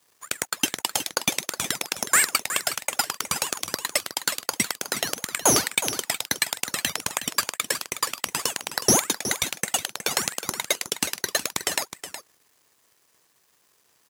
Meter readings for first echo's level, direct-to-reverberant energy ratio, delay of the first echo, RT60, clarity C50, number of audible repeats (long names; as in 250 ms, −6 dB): −11.0 dB, no reverb audible, 367 ms, no reverb audible, no reverb audible, 1